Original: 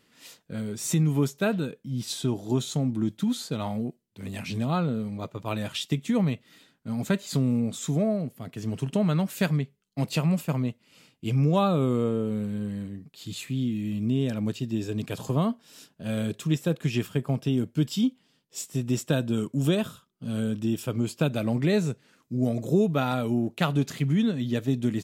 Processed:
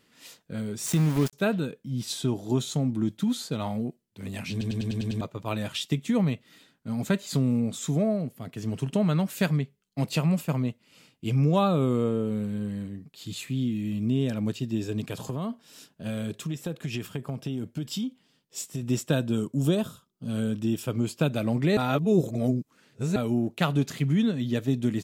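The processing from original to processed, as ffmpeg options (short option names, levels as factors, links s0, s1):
-filter_complex "[0:a]asettb=1/sr,asplit=3[s0][s1][s2];[s0]atrim=end=0.864[s3];[s1]atrim=start=0.86:end=1.33,asetpts=PTS-STARTPTS,afade=t=in:d=0.004:c=qsin,afade=t=out:st=0.466:d=0.004:c=qsin,aeval=exprs='val(0)*gte(abs(val(0)),0.0335)':c=same[s4];[s2]atrim=start=1.326[s5];[s3][s4]acrossfade=d=0.004:c1=hsin:c2=qsin[s6];[s6][s5]acrossfade=d=0.004:c1=qsin:c2=hsin,asettb=1/sr,asplit=3[s7][s8][s9];[s7]atrim=end=15.004[s10];[s8]atrim=start=15:end=18.83,asetpts=PTS-STARTPTS,afade=t=in:d=0.004:c=qsin,afade=t=out:st=3.826:d=0.004:c=qsin,acompressor=threshold=0.0447:ratio=6:attack=3.2:release=140:knee=1:detection=peak[s11];[s9]atrim=start=18.826[s12];[s10][s11]acrossfade=d=0.004:c1=hsin:c2=qsin[s13];[s13][s12]acrossfade=d=0.004:c1=qsin:c2=hsin,asettb=1/sr,asplit=3[s14][s15][s16];[s14]atrim=end=19.374[s17];[s15]atrim=start=19.37:end=20.29,asetpts=PTS-STARTPTS,afade=t=in:d=0.004:c=qsin,afade=t=out:st=0.916:d=0.004:c=qsin,equalizer=f=2100:t=o:w=1.2:g=-7[s18];[s16]atrim=start=20.286[s19];[s17][s18]acrossfade=d=0.004:c1=hsin:c2=qsin[s20];[s20][s19]acrossfade=d=0.004:c1=qsin:c2=hsin,asplit=10[s21][s22][s23][s24][s25][s26][s27][s28][s29][s30];[s21]atrim=end=4.612[s31];[s22]atrim=start=4.508:end=4.612[s32];[s23]atrim=start=4.508:end=4.612[s33];[s24]atrim=start=4.508:end=4.612[s34];[s25]atrim=start=4.508:end=4.612[s35];[s26]atrim=start=4.508:end=4.612[s36];[s27]atrim=start=4.508:end=4.612[s37];[s28]atrim=start=5.208:end=21.772[s38];[s29]atrim=start=21.768:end=23.162,asetpts=PTS-STARTPTS,areverse[s39];[s30]atrim=start=23.158[s40];[s31][s32]acrossfade=d=0.004:c1=hsin:c2=hsin[s41];[s41][s33]acrossfade=d=0.004:c1=hsin:c2=hsin[s42];[s42][s34]acrossfade=d=0.004:c1=hsin:c2=hsin[s43];[s43][s35]acrossfade=d=0.004:c1=hsin:c2=hsin[s44];[s44][s36]acrossfade=d=0.004:c1=hsin:c2=hsin[s45];[s45][s37]acrossfade=d=0.004:c1=hsin:c2=hsin[s46];[s46][s38]acrossfade=d=0.004:c1=hsin:c2=hsin[s47];[s47][s39]acrossfade=d=0.004:c1=hsin:c2=hsin[s48];[s48][s40]acrossfade=d=0.004:c1=hsin:c2=hsin"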